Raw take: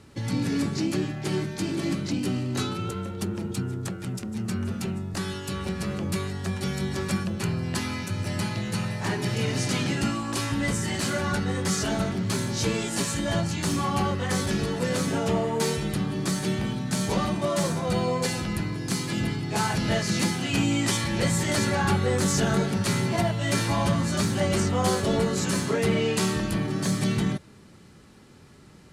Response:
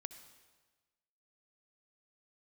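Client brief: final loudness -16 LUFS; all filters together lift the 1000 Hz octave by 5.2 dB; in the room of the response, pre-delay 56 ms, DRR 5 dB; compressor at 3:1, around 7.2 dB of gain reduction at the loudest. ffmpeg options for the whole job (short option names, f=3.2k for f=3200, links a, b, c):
-filter_complex "[0:a]equalizer=f=1k:t=o:g=6.5,acompressor=threshold=-28dB:ratio=3,asplit=2[a][b];[1:a]atrim=start_sample=2205,adelay=56[c];[b][c]afir=irnorm=-1:irlink=0,volume=-1dB[d];[a][d]amix=inputs=2:normalize=0,volume=13.5dB"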